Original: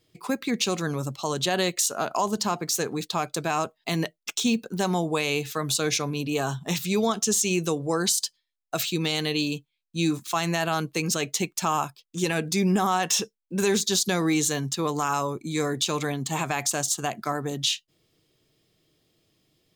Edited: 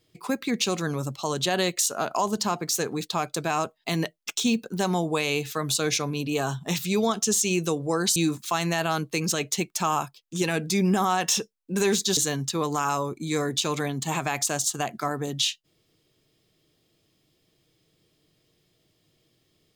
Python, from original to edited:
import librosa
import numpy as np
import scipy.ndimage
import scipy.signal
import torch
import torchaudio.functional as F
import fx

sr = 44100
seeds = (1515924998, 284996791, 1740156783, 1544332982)

y = fx.edit(x, sr, fx.cut(start_s=8.16, length_s=1.82),
    fx.cut(start_s=13.99, length_s=0.42), tone=tone)